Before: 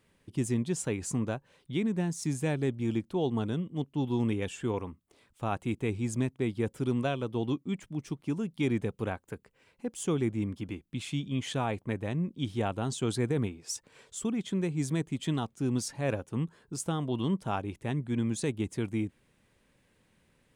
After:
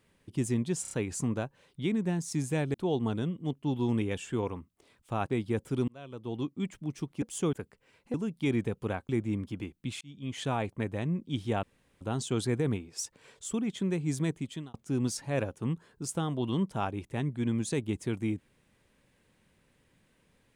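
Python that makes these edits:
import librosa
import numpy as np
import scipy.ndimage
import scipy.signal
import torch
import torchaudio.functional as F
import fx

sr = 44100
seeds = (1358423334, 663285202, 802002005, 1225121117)

y = fx.edit(x, sr, fx.stutter(start_s=0.82, slice_s=0.03, count=4),
    fx.cut(start_s=2.65, length_s=0.4),
    fx.cut(start_s=5.59, length_s=0.78),
    fx.fade_in_span(start_s=6.97, length_s=0.76),
    fx.swap(start_s=8.31, length_s=0.95, other_s=9.87, other_length_s=0.31),
    fx.fade_in_span(start_s=11.1, length_s=0.48),
    fx.insert_room_tone(at_s=12.72, length_s=0.38),
    fx.fade_out_span(start_s=15.04, length_s=0.41), tone=tone)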